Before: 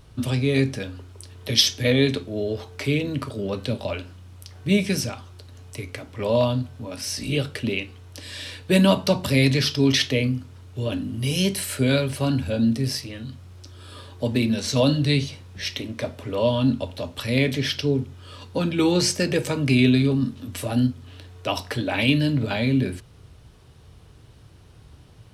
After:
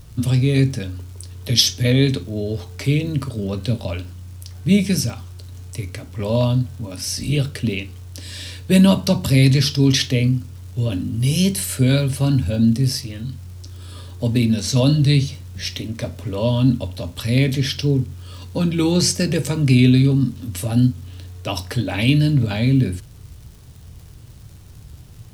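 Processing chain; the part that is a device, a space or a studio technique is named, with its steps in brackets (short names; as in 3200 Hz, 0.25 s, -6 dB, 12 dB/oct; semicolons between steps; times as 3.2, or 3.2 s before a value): vinyl LP (crackle 130/s -41 dBFS; pink noise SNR 35 dB); tone controls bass +10 dB, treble +7 dB; gain -1.5 dB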